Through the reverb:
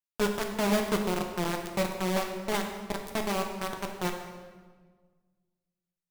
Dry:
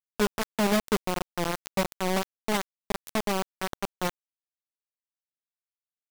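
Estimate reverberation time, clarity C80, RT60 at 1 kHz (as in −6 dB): 1.5 s, 7.0 dB, 1.4 s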